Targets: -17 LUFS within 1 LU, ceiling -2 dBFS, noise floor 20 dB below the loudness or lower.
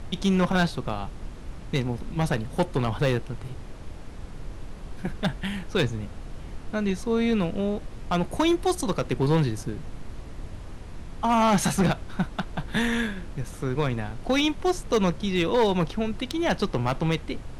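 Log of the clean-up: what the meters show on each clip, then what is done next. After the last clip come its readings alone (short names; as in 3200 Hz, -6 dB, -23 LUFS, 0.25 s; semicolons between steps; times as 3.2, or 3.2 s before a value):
clipped 0.9%; flat tops at -16.0 dBFS; noise floor -40 dBFS; noise floor target -46 dBFS; loudness -26.0 LUFS; peak -16.0 dBFS; loudness target -17.0 LUFS
-> clip repair -16 dBFS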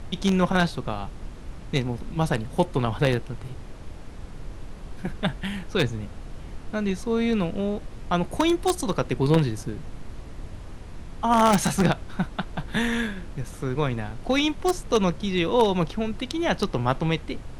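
clipped 0.0%; noise floor -40 dBFS; noise floor target -46 dBFS
-> noise print and reduce 6 dB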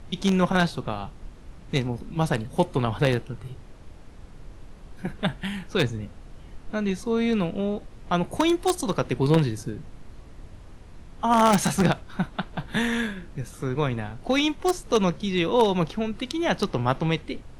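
noise floor -45 dBFS; noise floor target -46 dBFS
-> noise print and reduce 6 dB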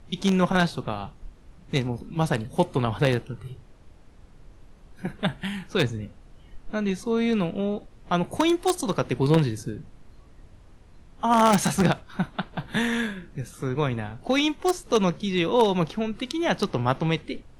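noise floor -51 dBFS; loudness -25.5 LUFS; peak -7.0 dBFS; loudness target -17.0 LUFS
-> gain +8.5 dB; limiter -2 dBFS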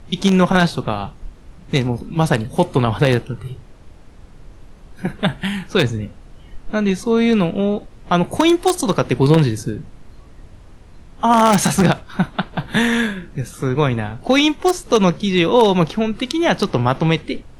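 loudness -17.5 LUFS; peak -2.0 dBFS; noise floor -43 dBFS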